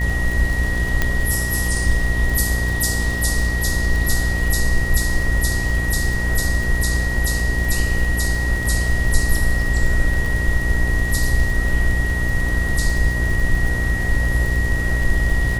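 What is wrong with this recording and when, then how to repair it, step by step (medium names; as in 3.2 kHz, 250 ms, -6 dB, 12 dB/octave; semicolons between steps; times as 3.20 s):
buzz 60 Hz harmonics 17 -22 dBFS
crackle 44 per s -23 dBFS
whine 1.9 kHz -24 dBFS
1.02 s: pop -4 dBFS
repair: de-click; band-stop 1.9 kHz, Q 30; de-hum 60 Hz, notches 17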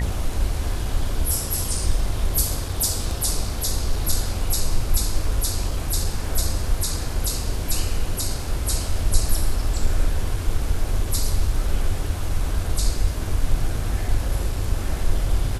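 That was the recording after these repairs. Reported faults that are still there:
nothing left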